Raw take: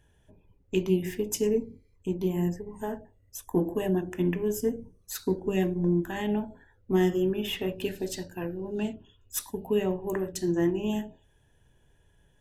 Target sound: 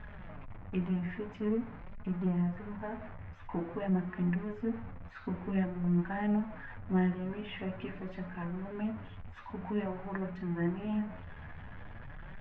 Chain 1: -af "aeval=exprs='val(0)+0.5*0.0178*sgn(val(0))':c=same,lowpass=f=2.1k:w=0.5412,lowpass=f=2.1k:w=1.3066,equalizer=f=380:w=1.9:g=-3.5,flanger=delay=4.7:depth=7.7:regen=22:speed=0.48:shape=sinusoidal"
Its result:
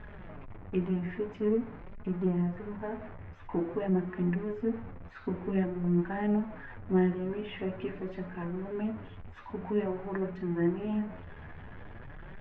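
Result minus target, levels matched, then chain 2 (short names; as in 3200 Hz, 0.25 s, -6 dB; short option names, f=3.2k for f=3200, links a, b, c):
500 Hz band +4.0 dB
-af "aeval=exprs='val(0)+0.5*0.0178*sgn(val(0))':c=same,lowpass=f=2.1k:w=0.5412,lowpass=f=2.1k:w=1.3066,equalizer=f=380:w=1.9:g=-12,flanger=delay=4.7:depth=7.7:regen=22:speed=0.48:shape=sinusoidal"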